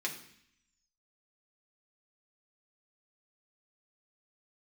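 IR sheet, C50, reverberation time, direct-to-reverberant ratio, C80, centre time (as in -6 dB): 9.5 dB, 0.65 s, -1.5 dB, 12.5 dB, 17 ms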